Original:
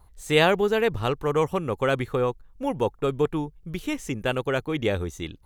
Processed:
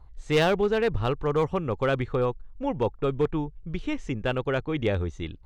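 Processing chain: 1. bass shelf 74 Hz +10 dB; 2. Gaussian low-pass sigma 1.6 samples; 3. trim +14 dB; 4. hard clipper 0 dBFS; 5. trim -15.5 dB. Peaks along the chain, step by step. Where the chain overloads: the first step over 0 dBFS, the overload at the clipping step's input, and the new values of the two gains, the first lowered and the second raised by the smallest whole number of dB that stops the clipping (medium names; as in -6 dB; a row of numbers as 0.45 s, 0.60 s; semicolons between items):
-5.5 dBFS, -6.5 dBFS, +7.5 dBFS, 0.0 dBFS, -15.5 dBFS; step 3, 7.5 dB; step 3 +6 dB, step 5 -7.5 dB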